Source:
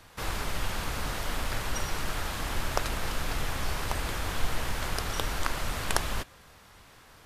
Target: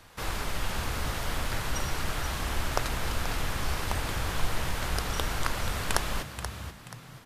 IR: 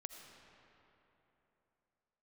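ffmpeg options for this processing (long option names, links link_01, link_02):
-filter_complex "[0:a]asplit=5[link_01][link_02][link_03][link_04][link_05];[link_02]adelay=481,afreqshift=56,volume=-9.5dB[link_06];[link_03]adelay=962,afreqshift=112,volume=-18.6dB[link_07];[link_04]adelay=1443,afreqshift=168,volume=-27.7dB[link_08];[link_05]adelay=1924,afreqshift=224,volume=-36.9dB[link_09];[link_01][link_06][link_07][link_08][link_09]amix=inputs=5:normalize=0"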